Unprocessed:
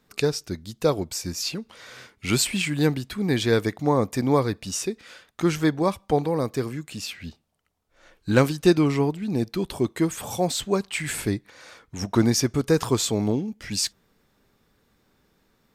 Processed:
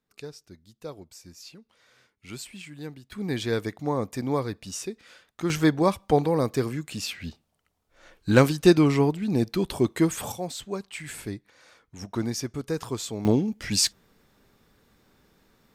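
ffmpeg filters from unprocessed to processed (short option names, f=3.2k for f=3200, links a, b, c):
-af "asetnsamples=n=441:p=0,asendcmd='3.12 volume volume -6dB;5.5 volume volume 1dB;10.32 volume volume -9dB;13.25 volume volume 3dB',volume=-17dB"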